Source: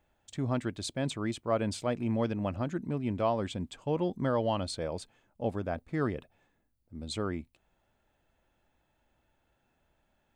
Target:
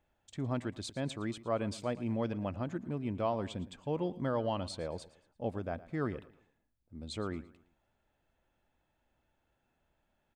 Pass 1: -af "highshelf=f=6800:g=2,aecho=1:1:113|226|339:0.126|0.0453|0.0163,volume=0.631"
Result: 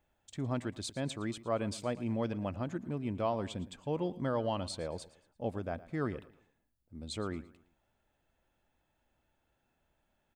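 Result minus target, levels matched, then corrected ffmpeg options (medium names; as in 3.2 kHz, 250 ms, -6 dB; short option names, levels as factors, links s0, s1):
8 kHz band +3.5 dB
-af "highshelf=f=6800:g=-4.5,aecho=1:1:113|226|339:0.126|0.0453|0.0163,volume=0.631"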